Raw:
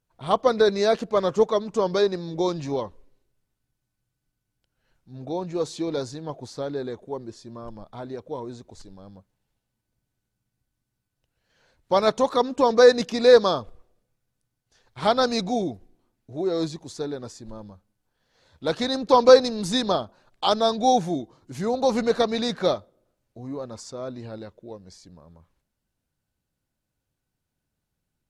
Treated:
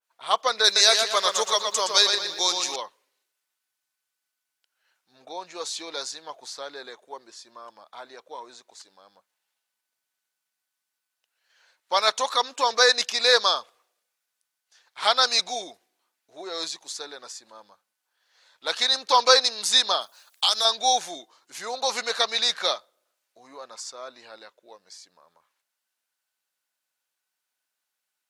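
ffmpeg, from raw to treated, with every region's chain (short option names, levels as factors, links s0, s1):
-filter_complex "[0:a]asettb=1/sr,asplit=3[s0][s1][s2];[s0]atrim=end=0.644[s3];[s1]atrim=start=0.64:end=2.76,asetpts=PTS-STARTPTS,afade=t=in:d=0.004:c=qsin,afade=t=out:st=2.116:d=0.004:c=qsin,aemphasis=mode=production:type=75kf,asplit=2[s4][s5];[s5]adelay=118,lowpass=f=4800:p=1,volume=0.596,asplit=2[s6][s7];[s7]adelay=118,lowpass=f=4800:p=1,volume=0.47,asplit=2[s8][s9];[s9]adelay=118,lowpass=f=4800:p=1,volume=0.47,asplit=2[s10][s11];[s11]adelay=118,lowpass=f=4800:p=1,volume=0.47,asplit=2[s12][s13];[s13]adelay=118,lowpass=f=4800:p=1,volume=0.47,asplit=2[s14][s15];[s15]adelay=118,lowpass=f=4800:p=1,volume=0.47[s16];[s4][s6][s8][s10][s12][s14][s16]amix=inputs=7:normalize=0,atrim=end_sample=93492[s17];[s2]atrim=start=2.756[s18];[s3][s17]acrossfade=d=0.004:c1=hsin:c2=qsin[s19];[s19][s18]acrossfade=d=0.004:c1=qsin:c2=hsin,asettb=1/sr,asplit=3[s20][s21][s22];[s20]atrim=end=20.014[s23];[s21]atrim=start=20.01:end=20.65,asetpts=PTS-STARTPTS,afade=t=in:d=0.004:c=qsin,afade=t=out:st=0.636:d=0.004:c=qsin,aemphasis=mode=production:type=75fm,acompressor=threshold=0.0794:ratio=4:attack=3.2:release=140:knee=1:detection=peak[s24];[s22]atrim=start=20.646[s25];[s23][s24]acrossfade=d=0.004:c1=hsin:c2=qsin[s26];[s26][s25]acrossfade=d=0.004:c1=qsin:c2=hsin,highpass=1100,adynamicequalizer=threshold=0.00708:dfrequency=2200:dqfactor=0.7:tfrequency=2200:tqfactor=0.7:attack=5:release=100:ratio=0.375:range=2.5:mode=boostabove:tftype=highshelf,volume=1.68"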